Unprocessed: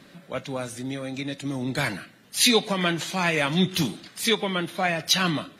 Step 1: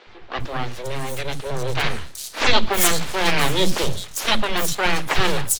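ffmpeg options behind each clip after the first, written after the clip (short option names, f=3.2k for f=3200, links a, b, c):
-filter_complex "[0:a]aeval=exprs='abs(val(0))':c=same,acrossover=split=260|4900[a][b][c];[a]adelay=70[d];[c]adelay=400[e];[d][b][e]amix=inputs=3:normalize=0,volume=8dB"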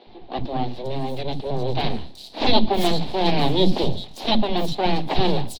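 -af "firequalizer=gain_entry='entry(110,0);entry(230,9);entry(500,0);entry(750,6);entry(1300,-15);entry(4000,2);entry(6300,-19)':delay=0.05:min_phase=1,volume=-1dB"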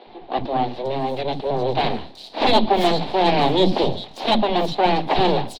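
-filter_complex "[0:a]asplit=2[a][b];[b]highpass=f=720:p=1,volume=15dB,asoftclip=type=tanh:threshold=-1.5dB[c];[a][c]amix=inputs=2:normalize=0,lowpass=f=1.5k:p=1,volume=-6dB"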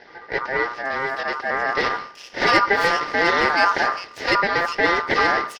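-af "aeval=exprs='val(0)*sin(2*PI*1200*n/s)':c=same,volume=1.5dB"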